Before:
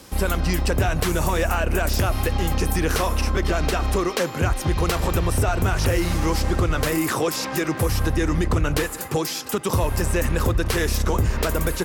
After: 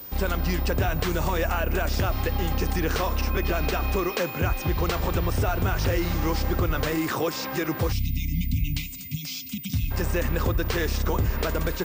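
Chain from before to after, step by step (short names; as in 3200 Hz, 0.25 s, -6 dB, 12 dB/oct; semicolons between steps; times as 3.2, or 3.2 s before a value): 3.3–4.69 whine 2500 Hz -35 dBFS; 7.92–9.91 spectral delete 290–2000 Hz; pulse-width modulation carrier 15000 Hz; gain -3.5 dB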